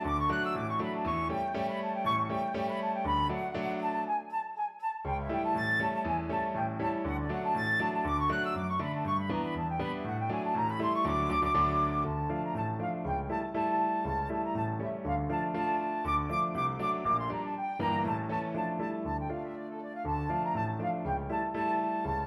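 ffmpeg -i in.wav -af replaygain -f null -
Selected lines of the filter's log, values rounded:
track_gain = +13.6 dB
track_peak = 0.096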